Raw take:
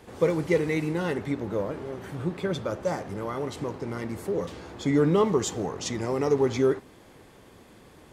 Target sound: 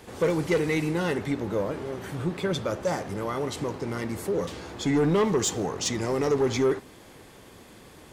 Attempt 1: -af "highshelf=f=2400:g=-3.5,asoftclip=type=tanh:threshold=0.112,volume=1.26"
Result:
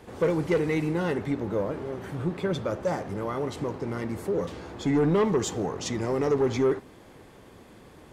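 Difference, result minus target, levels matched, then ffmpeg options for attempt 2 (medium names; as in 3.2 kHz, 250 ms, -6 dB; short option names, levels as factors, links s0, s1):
4 kHz band -5.0 dB
-af "highshelf=f=2400:g=5,asoftclip=type=tanh:threshold=0.112,volume=1.26"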